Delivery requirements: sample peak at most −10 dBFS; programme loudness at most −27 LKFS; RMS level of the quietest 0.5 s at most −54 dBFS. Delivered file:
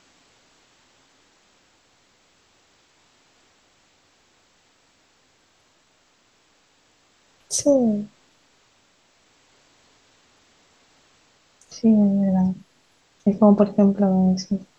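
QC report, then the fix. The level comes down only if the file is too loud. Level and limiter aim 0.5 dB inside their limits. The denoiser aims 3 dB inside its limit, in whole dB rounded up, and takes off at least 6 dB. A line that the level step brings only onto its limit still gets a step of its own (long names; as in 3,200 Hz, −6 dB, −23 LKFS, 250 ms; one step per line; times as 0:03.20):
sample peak −5.0 dBFS: out of spec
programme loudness −19.5 LKFS: out of spec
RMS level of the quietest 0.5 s −62 dBFS: in spec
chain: level −8 dB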